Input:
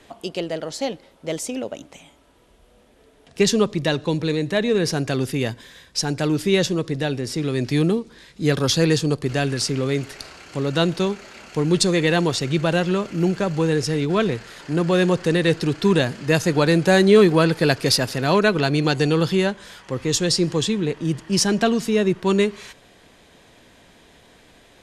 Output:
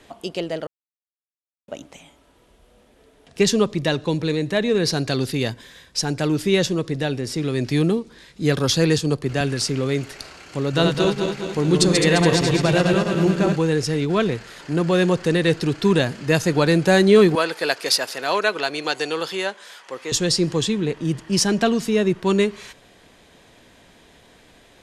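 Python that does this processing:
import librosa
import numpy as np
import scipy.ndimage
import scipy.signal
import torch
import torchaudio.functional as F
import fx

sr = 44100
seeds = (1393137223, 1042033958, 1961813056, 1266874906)

y = fx.peak_eq(x, sr, hz=4200.0, db=10.5, octaves=0.34, at=(4.83, 5.5))
y = fx.band_widen(y, sr, depth_pct=40, at=(8.98, 9.41))
y = fx.reverse_delay_fb(y, sr, ms=105, feedback_pct=72, wet_db=-4.0, at=(10.63, 13.56))
y = fx.highpass(y, sr, hz=540.0, slope=12, at=(17.35, 20.12))
y = fx.edit(y, sr, fx.silence(start_s=0.67, length_s=1.01), tone=tone)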